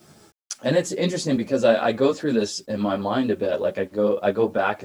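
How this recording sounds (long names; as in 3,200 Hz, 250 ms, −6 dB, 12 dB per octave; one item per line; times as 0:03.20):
tremolo saw up 8.1 Hz, depth 30%
a quantiser's noise floor 10 bits, dither none
a shimmering, thickened sound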